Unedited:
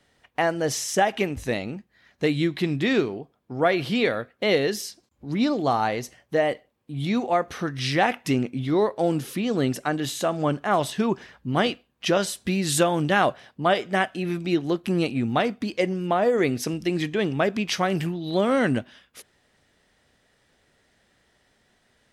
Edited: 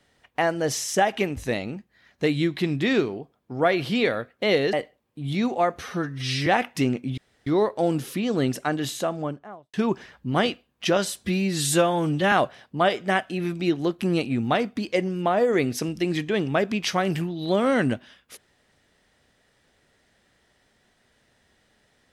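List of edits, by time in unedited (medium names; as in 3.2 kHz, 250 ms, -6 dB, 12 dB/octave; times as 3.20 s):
4.73–6.45 s: delete
7.51–7.96 s: stretch 1.5×
8.67 s: insert room tone 0.29 s
10.03–10.94 s: studio fade out
12.46–13.17 s: stretch 1.5×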